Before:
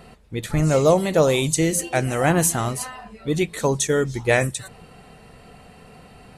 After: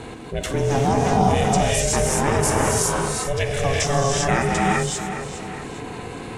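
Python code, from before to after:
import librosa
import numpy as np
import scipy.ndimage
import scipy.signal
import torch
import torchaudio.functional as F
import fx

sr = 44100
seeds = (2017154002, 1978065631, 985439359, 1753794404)

p1 = fx.formant_shift(x, sr, semitones=-2)
p2 = fx.backlash(p1, sr, play_db=-34.0)
p3 = p1 + F.gain(torch.from_numpy(p2), -9.0).numpy()
p4 = fx.rev_gated(p3, sr, seeds[0], gate_ms=420, shape='rising', drr_db=-4.0)
p5 = p4 * np.sin(2.0 * np.pi * 280.0 * np.arange(len(p4)) / sr)
p6 = p5 + fx.echo_feedback(p5, sr, ms=412, feedback_pct=33, wet_db=-18.5, dry=0)
p7 = fx.env_flatten(p6, sr, amount_pct=50)
y = F.gain(torch.from_numpy(p7), -8.0).numpy()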